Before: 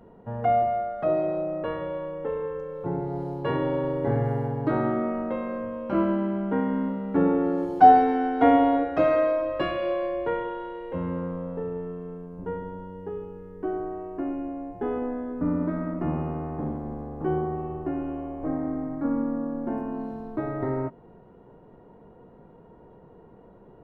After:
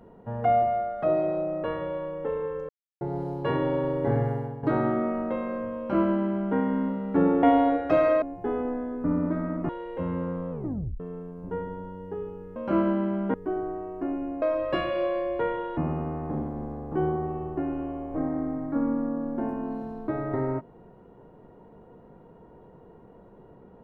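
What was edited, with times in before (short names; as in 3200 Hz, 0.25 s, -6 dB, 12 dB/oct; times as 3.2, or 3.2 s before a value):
2.69–3.01 mute
4.2–4.63 fade out, to -11 dB
5.78–6.56 copy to 13.51
7.43–8.5 cut
9.29–10.64 swap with 14.59–16.06
11.46 tape stop 0.49 s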